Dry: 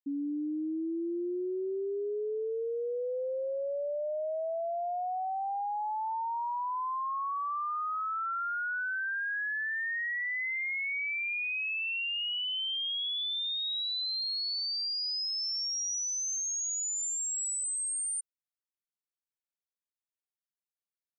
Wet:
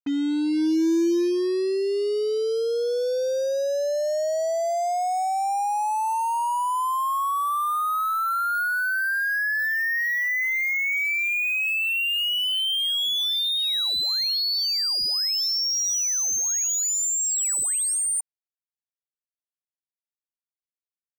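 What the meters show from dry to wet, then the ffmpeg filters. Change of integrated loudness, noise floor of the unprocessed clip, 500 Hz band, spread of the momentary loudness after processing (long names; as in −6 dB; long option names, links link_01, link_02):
+9.0 dB, below −85 dBFS, +9.5 dB, 4 LU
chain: -af "adynamicequalizer=threshold=0.00355:dfrequency=330:dqfactor=6.7:tfrequency=330:tqfactor=6.7:attack=5:release=100:ratio=0.375:range=2.5:mode=boostabove:tftype=bell,acrusher=bits=6:mix=0:aa=0.5,volume=8.5dB"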